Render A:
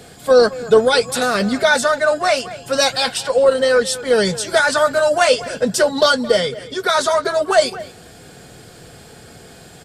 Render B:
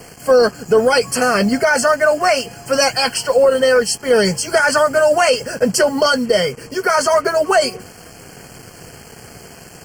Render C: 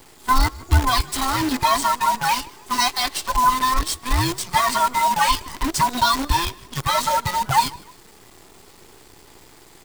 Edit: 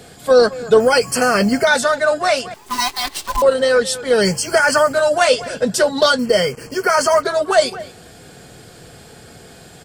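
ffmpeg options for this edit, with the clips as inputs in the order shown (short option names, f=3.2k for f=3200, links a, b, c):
-filter_complex "[1:a]asplit=3[a][b][c];[0:a]asplit=5[d][e][f][g][h];[d]atrim=end=0.802[i];[a]atrim=start=0.798:end=1.672[j];[e]atrim=start=1.668:end=2.542[k];[2:a]atrim=start=2.538:end=3.422[l];[f]atrim=start=3.418:end=4.212[m];[b]atrim=start=4.208:end=4.932[n];[g]atrim=start=4.928:end=6.192[o];[c]atrim=start=6.188:end=7.232[p];[h]atrim=start=7.228[q];[i][j]acrossfade=d=0.004:c1=hsin:c2=hsin[r];[r][k]acrossfade=d=0.004:c1=hsin:c2=hsin[s];[s][l]acrossfade=d=0.004:c1=hsin:c2=hsin[t];[t][m]acrossfade=d=0.004:c1=hsin:c2=hsin[u];[u][n]acrossfade=d=0.004:c1=hsin:c2=hsin[v];[v][o]acrossfade=d=0.004:c1=hsin:c2=hsin[w];[w][p]acrossfade=d=0.004:c1=hsin:c2=hsin[x];[x][q]acrossfade=d=0.004:c1=hsin:c2=hsin"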